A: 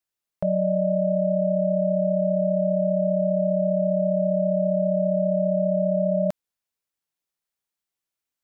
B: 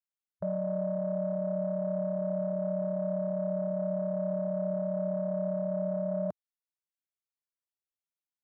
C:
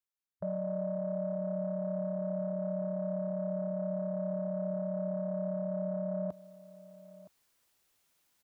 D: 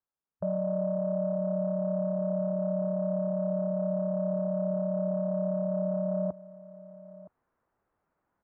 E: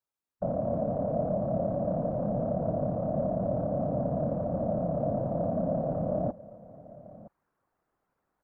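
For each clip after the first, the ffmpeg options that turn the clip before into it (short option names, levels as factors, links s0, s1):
-af "alimiter=level_in=1.06:limit=0.0631:level=0:latency=1:release=180,volume=0.944,afwtdn=0.0178"
-af "areverse,acompressor=mode=upward:threshold=0.00316:ratio=2.5,areverse,aecho=1:1:968:0.119,volume=0.708"
-af "lowpass=f=1400:w=0.5412,lowpass=f=1400:w=1.3066,volume=1.78"
-af "afftfilt=real='hypot(re,im)*cos(2*PI*random(0))':imag='hypot(re,im)*sin(2*PI*random(1))':win_size=512:overlap=0.75,volume=2"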